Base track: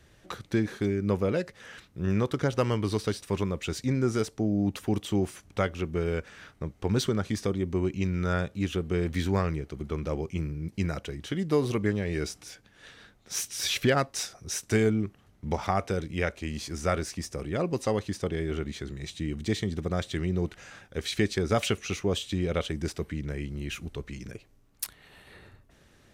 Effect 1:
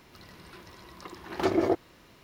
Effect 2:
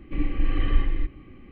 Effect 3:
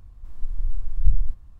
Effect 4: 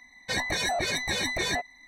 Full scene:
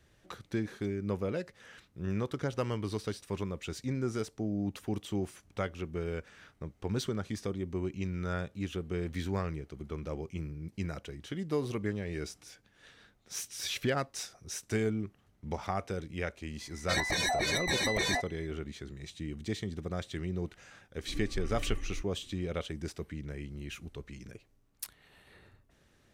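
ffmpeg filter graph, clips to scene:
ffmpeg -i bed.wav -i cue0.wav -i cue1.wav -i cue2.wav -i cue3.wav -filter_complex "[0:a]volume=-7dB[link_01];[4:a]atrim=end=1.87,asetpts=PTS-STARTPTS,volume=-2.5dB,afade=type=in:duration=0.004:curve=hsin,afade=type=out:start_time=1.866:duration=0.004:curve=hsin,adelay=16600[link_02];[2:a]atrim=end=1.51,asetpts=PTS-STARTPTS,volume=-14.5dB,afade=type=in:duration=0.004:curve=hsin,afade=type=out:start_time=1.506:duration=0.004:curve=hsin,adelay=20960[link_03];[link_01][link_02][link_03]amix=inputs=3:normalize=0" out.wav

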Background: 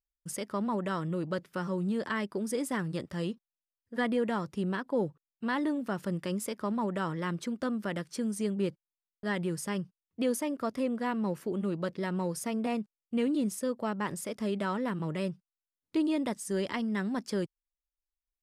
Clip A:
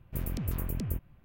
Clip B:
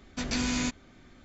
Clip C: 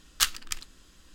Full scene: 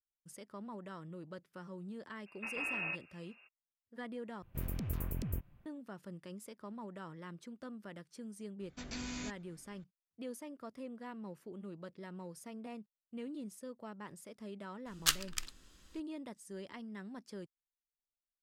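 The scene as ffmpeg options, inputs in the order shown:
ffmpeg -i bed.wav -i cue0.wav -i cue1.wav -i cue2.wav -filter_complex "[2:a]asplit=2[link_01][link_02];[0:a]volume=-15dB[link_03];[link_01]lowpass=frequency=2400:width_type=q:width=0.5098,lowpass=frequency=2400:width_type=q:width=0.6013,lowpass=frequency=2400:width_type=q:width=0.9,lowpass=frequency=2400:width_type=q:width=2.563,afreqshift=-2800[link_04];[link_03]asplit=2[link_05][link_06];[link_05]atrim=end=4.424[link_07];[1:a]atrim=end=1.24,asetpts=PTS-STARTPTS,volume=-5dB[link_08];[link_06]atrim=start=5.656[link_09];[link_04]atrim=end=1.24,asetpts=PTS-STARTPTS,volume=-9dB,afade=type=in:duration=0.02,afade=type=out:start_time=1.22:duration=0.02,adelay=2250[link_10];[link_02]atrim=end=1.24,asetpts=PTS-STARTPTS,volume=-13dB,afade=type=in:duration=0.004:curve=hsin,afade=type=out:start_time=1.236:duration=0.004:curve=hsin,adelay=8600[link_11];[3:a]atrim=end=1.14,asetpts=PTS-STARTPTS,volume=-5.5dB,afade=type=in:duration=0.004:curve=hsin,afade=type=out:start_time=1.136:duration=0.004:curve=hsin,adelay=14860[link_12];[link_07][link_08]acrossfade=duration=0.004:curve1=hsin:curve2=hsin[link_13];[link_13][link_09]acrossfade=duration=0.004:curve1=hsin:curve2=hsin[link_14];[link_14][link_10][link_11][link_12]amix=inputs=4:normalize=0" out.wav

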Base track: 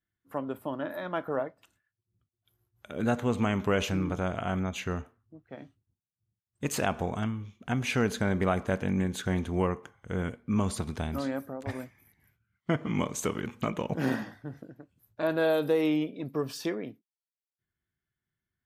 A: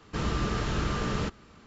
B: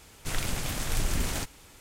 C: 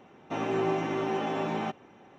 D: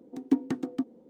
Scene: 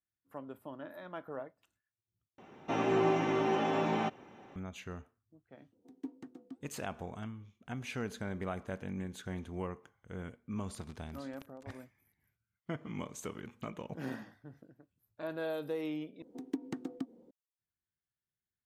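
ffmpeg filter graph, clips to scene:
ffmpeg -i bed.wav -i cue0.wav -i cue1.wav -i cue2.wav -i cue3.wav -filter_complex "[4:a]asplit=2[link_01][link_02];[0:a]volume=-11.5dB[link_03];[link_01]flanger=delay=3:depth=5.3:regen=-83:speed=1.9:shape=triangular[link_04];[1:a]acrusher=bits=2:mix=0:aa=0.5[link_05];[link_02]acompressor=threshold=-37dB:ratio=4:attack=59:release=129:knee=6:detection=peak[link_06];[link_03]asplit=3[link_07][link_08][link_09];[link_07]atrim=end=2.384[link_10];[3:a]atrim=end=2.18,asetpts=PTS-STARTPTS,volume=-0.5dB[link_11];[link_08]atrim=start=4.556:end=16.224[link_12];[link_06]atrim=end=1.09,asetpts=PTS-STARTPTS,volume=-5dB[link_13];[link_09]atrim=start=17.306[link_14];[link_04]atrim=end=1.09,asetpts=PTS-STARTPTS,volume=-14dB,afade=type=in:duration=0.004:curve=hsin,afade=type=out:start_time=1.086:duration=0.004:curve=hsin,adelay=5720[link_15];[link_05]atrim=end=1.66,asetpts=PTS-STARTPTS,volume=-11dB,afade=type=in:duration=0.004:curve=hsin,afade=type=out:start_time=1.656:duration=0.004:curve=hsin,adelay=10550[link_16];[link_10][link_11]acrossfade=duration=0.004:curve1=hsin:curve2=hsin[link_17];[link_17][link_12]acrossfade=duration=0.004:curve1=hsin:curve2=hsin[link_18];[link_18][link_13]acrossfade=duration=0.004:curve1=hsin:curve2=hsin[link_19];[link_19][link_14]acrossfade=duration=0.004:curve1=hsin:curve2=hsin[link_20];[link_20][link_15][link_16]amix=inputs=3:normalize=0" out.wav

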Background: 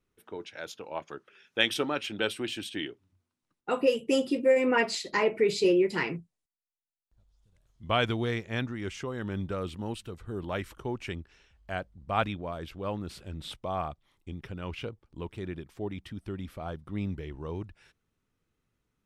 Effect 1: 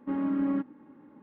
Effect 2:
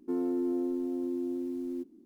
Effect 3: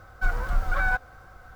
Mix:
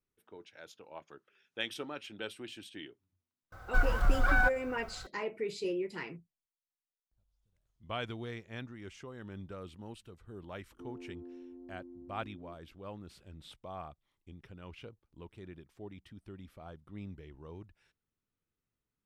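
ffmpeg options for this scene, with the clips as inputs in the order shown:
ffmpeg -i bed.wav -i cue0.wav -i cue1.wav -i cue2.wav -filter_complex "[0:a]volume=-11.5dB[link_01];[3:a]acontrast=65[link_02];[2:a]lowpass=1300[link_03];[link_02]atrim=end=1.55,asetpts=PTS-STARTPTS,volume=-8dB,afade=type=in:duration=0.004:curve=hsin,afade=type=out:start_time=1.546:duration=0.004:curve=hsin,adelay=3520[link_04];[link_03]atrim=end=2.05,asetpts=PTS-STARTPTS,volume=-17.5dB,afade=type=in:duration=0.004:curve=hsin,afade=type=out:start_time=2.046:duration=0.004:curve=hsin,adelay=10710[link_05];[link_01][link_04][link_05]amix=inputs=3:normalize=0" out.wav

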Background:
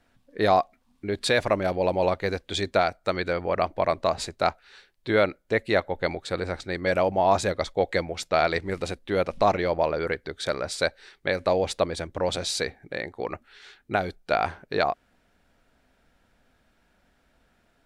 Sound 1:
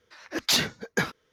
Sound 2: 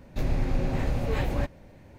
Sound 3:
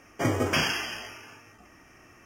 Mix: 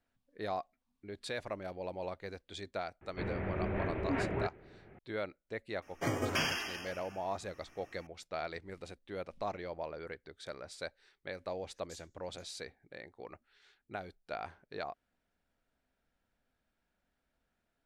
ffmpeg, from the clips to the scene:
ffmpeg -i bed.wav -i cue0.wav -i cue1.wav -i cue2.wav -filter_complex "[0:a]volume=-17dB[link_01];[2:a]highpass=frequency=240:width_type=q:width=0.5412,highpass=frequency=240:width_type=q:width=1.307,lowpass=frequency=2800:width_type=q:width=0.5176,lowpass=frequency=2800:width_type=q:width=0.7071,lowpass=frequency=2800:width_type=q:width=1.932,afreqshift=-170[link_02];[3:a]bandreject=frequency=50:width_type=h:width=6,bandreject=frequency=100:width_type=h:width=6,bandreject=frequency=150:width_type=h:width=6,bandreject=frequency=200:width_type=h:width=6,bandreject=frequency=250:width_type=h:width=6,bandreject=frequency=300:width_type=h:width=6,bandreject=frequency=350:width_type=h:width=6,bandreject=frequency=400:width_type=h:width=6,bandreject=frequency=450:width_type=h:width=6[link_03];[1:a]bandpass=frequency=7700:width_type=q:width=5:csg=0[link_04];[link_02]atrim=end=1.98,asetpts=PTS-STARTPTS,volume=-1dB,afade=type=in:duration=0.004:curve=hsin,afade=type=out:start_time=1.976:duration=0.004:curve=hsin,adelay=3010[link_05];[link_03]atrim=end=2.25,asetpts=PTS-STARTPTS,volume=-7dB,afade=type=in:duration=0.004:curve=hsin,afade=type=out:start_time=2.246:duration=0.004:curve=hsin,adelay=5820[link_06];[link_04]atrim=end=1.32,asetpts=PTS-STARTPTS,volume=-18dB,afade=type=in:duration=0.004:curve=hsin,afade=type=out:start_time=1.316:duration=0.004:curve=hsin,adelay=11410[link_07];[link_01][link_05][link_06][link_07]amix=inputs=4:normalize=0" out.wav

